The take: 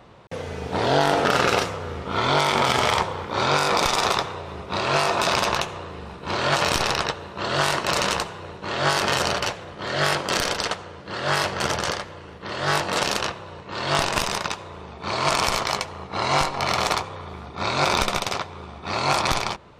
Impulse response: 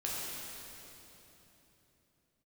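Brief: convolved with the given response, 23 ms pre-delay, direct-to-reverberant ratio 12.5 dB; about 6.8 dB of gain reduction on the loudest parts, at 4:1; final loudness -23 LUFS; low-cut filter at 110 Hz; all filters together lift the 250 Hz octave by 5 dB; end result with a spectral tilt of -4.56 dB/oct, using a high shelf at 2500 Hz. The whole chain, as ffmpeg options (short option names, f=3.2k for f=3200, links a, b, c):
-filter_complex "[0:a]highpass=110,equalizer=f=250:t=o:g=7.5,highshelf=f=2.5k:g=-7,acompressor=threshold=-23dB:ratio=4,asplit=2[a][b];[1:a]atrim=start_sample=2205,adelay=23[c];[b][c]afir=irnorm=-1:irlink=0,volume=-17dB[d];[a][d]amix=inputs=2:normalize=0,volume=5dB"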